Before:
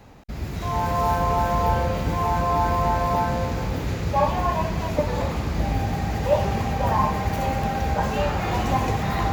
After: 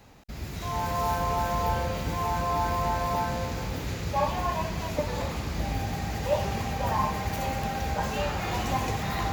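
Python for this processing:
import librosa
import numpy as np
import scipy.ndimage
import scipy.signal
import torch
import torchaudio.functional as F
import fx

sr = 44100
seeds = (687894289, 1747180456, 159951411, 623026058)

y = fx.high_shelf(x, sr, hz=2200.0, db=7.5)
y = y * librosa.db_to_amplitude(-6.5)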